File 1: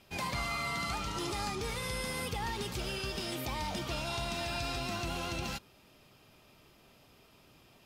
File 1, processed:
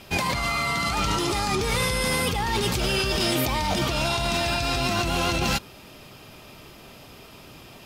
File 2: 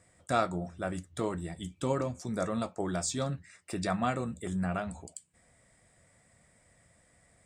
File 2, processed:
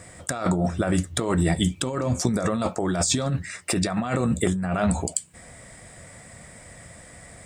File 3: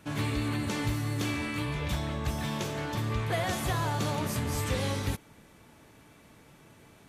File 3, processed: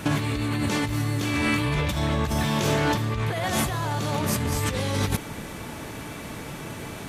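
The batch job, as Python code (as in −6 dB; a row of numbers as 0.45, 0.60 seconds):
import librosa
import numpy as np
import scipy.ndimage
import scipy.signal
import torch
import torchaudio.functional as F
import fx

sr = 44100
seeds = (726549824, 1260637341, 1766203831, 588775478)

y = fx.over_compress(x, sr, threshold_db=-38.0, ratio=-1.0)
y = y * 10.0 ** (-26 / 20.0) / np.sqrt(np.mean(np.square(y)))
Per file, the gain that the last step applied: +13.5, +14.0, +13.0 decibels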